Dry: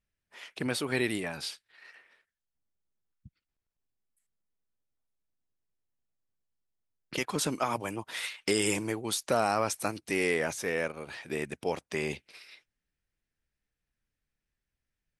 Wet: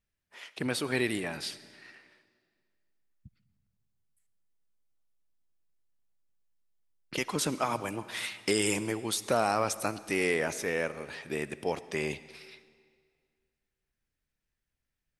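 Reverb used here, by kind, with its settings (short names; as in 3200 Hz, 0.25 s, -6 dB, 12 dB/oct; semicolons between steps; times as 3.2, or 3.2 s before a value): digital reverb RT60 2 s, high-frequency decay 0.9×, pre-delay 30 ms, DRR 15.5 dB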